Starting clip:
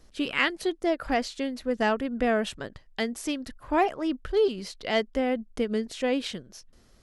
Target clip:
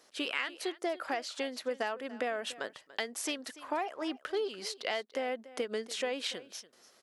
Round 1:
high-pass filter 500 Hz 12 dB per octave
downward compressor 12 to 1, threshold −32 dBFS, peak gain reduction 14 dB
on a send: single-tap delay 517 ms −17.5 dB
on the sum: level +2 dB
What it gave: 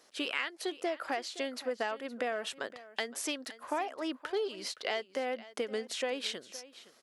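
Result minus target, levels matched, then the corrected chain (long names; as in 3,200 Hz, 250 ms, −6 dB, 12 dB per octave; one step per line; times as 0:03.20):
echo 228 ms late
high-pass filter 500 Hz 12 dB per octave
downward compressor 12 to 1, threshold −32 dBFS, peak gain reduction 14 dB
on a send: single-tap delay 289 ms −17.5 dB
on the sum: level +2 dB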